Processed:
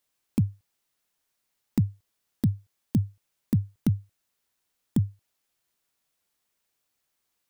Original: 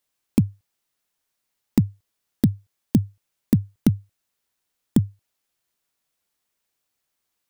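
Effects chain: peak limiter -14 dBFS, peak gain reduction 9 dB

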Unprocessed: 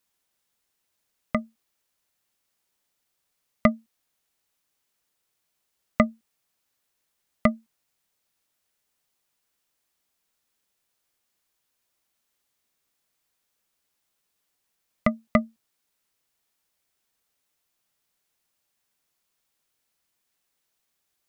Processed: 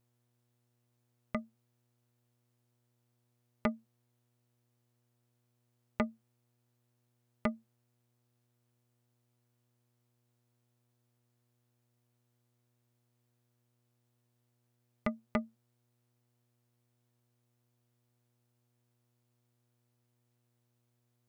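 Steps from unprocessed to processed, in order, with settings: mains buzz 120 Hz, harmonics 35, -69 dBFS -8 dB/octave; transformer saturation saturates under 390 Hz; trim -9 dB

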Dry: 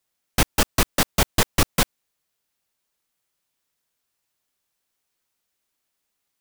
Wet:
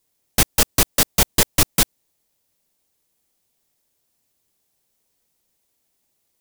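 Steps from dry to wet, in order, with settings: treble shelf 3.4 kHz +10.5 dB; in parallel at -12 dB: sample-and-hold 30×; on the sum: trim -2.5 dB

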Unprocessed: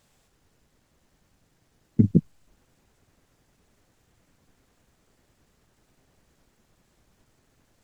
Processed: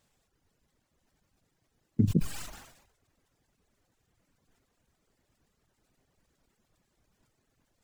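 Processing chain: reverb removal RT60 0.92 s; decay stretcher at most 67 dB/s; trim -7 dB

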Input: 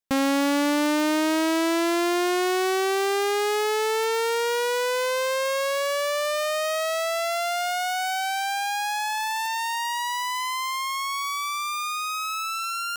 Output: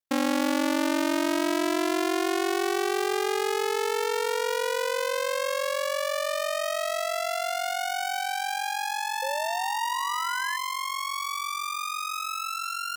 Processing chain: ring modulator 23 Hz; painted sound rise, 9.22–10.57 s, 520–1800 Hz -33 dBFS

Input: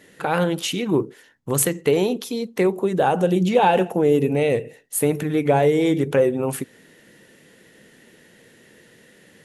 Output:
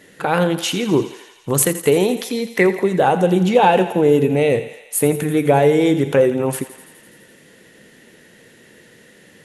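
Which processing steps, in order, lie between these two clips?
2.09–2.81 s: peaking EQ 1.9 kHz +11 dB 0.52 oct; thinning echo 84 ms, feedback 75%, high-pass 530 Hz, level -13 dB; trim +3.5 dB

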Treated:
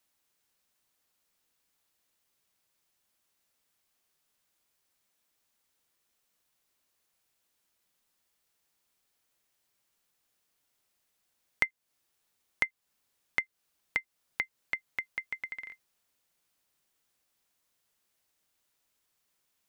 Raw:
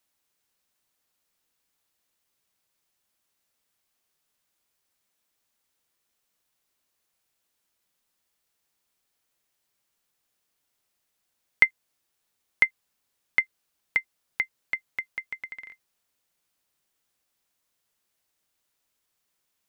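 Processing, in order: compression 2:1, threshold -32 dBFS, peak gain reduction 11 dB

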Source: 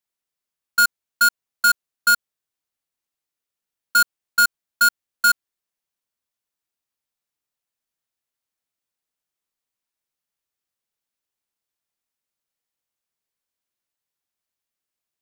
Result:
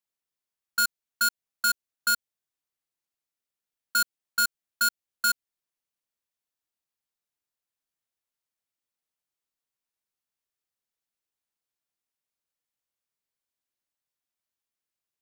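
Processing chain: dynamic bell 1.1 kHz, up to -6 dB, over -29 dBFS, Q 0.84; trim -4.5 dB

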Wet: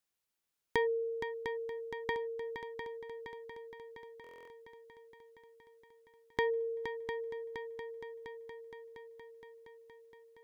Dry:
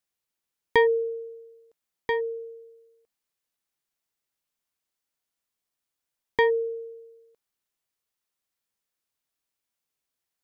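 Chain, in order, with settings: compression 2:1, threshold -36 dBFS, peak gain reduction 11 dB; multi-head delay 234 ms, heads second and third, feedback 66%, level -8.5 dB; buffer glitch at 4.22 s, samples 1024, times 10; trim -1.5 dB

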